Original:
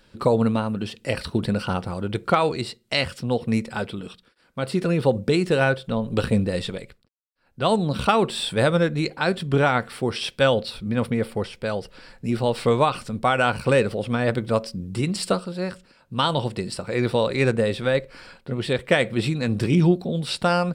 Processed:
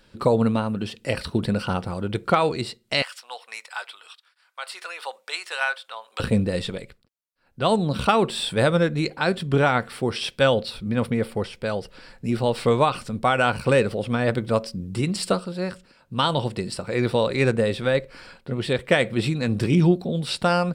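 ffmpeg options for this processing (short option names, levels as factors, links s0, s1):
-filter_complex "[0:a]asettb=1/sr,asplit=3[s0][s1][s2];[s0]atrim=end=3.024[s3];[s1]atrim=start=3.02:end=6.2,asetpts=PTS-STARTPTS,afade=t=in:d=0.004:c=qsin,afade=t=out:st=3.176:d=0.004:c=qsin,highpass=f=870:w=0.5412,highpass=f=870:w=1.3066[s4];[s2]atrim=start=6.196[s5];[s3][s4]acrossfade=d=0.004:c1=hsin:c2=qsin[s6];[s6][s5]acrossfade=d=0.004:c1=qsin:c2=hsin"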